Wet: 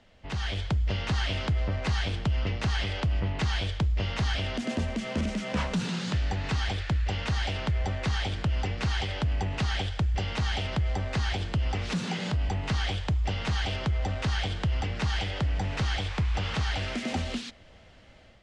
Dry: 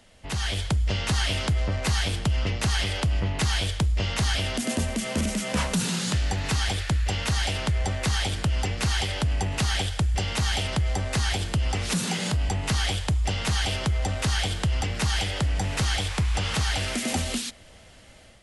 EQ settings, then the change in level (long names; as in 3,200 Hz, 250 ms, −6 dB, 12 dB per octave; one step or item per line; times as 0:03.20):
high-frequency loss of the air 140 metres
−2.5 dB